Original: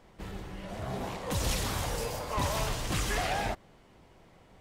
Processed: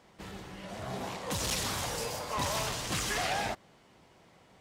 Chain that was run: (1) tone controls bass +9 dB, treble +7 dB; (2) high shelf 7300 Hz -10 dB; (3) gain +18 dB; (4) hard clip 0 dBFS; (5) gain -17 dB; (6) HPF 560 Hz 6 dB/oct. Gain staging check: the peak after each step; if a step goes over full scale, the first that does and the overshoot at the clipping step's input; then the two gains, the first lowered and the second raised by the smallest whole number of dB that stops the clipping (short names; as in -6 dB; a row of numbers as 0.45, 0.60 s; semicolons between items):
-12.0, -12.0, +6.0, 0.0, -17.0, -19.5 dBFS; step 3, 6.0 dB; step 3 +12 dB, step 5 -11 dB